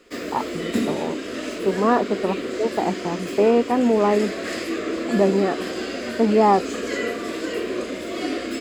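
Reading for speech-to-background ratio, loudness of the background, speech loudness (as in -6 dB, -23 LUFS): 6.5 dB, -28.0 LUFS, -21.5 LUFS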